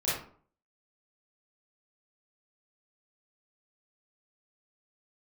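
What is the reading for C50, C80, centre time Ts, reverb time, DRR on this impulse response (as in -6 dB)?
0.0 dB, 6.5 dB, 57 ms, 0.50 s, -10.5 dB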